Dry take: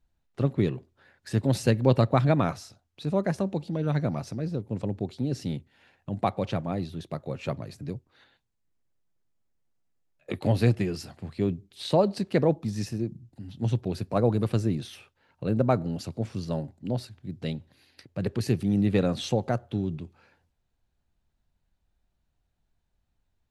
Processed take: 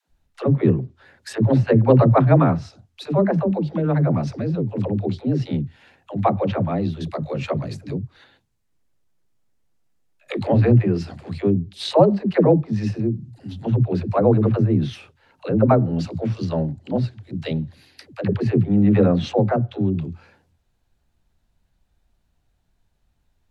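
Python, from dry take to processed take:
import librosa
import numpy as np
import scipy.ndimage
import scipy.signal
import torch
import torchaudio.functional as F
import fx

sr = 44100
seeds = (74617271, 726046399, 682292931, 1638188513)

y = fx.env_lowpass_down(x, sr, base_hz=1600.0, full_db=-23.5)
y = fx.dispersion(y, sr, late='lows', ms=92.0, hz=310.0)
y = y * librosa.db_to_amplitude(8.0)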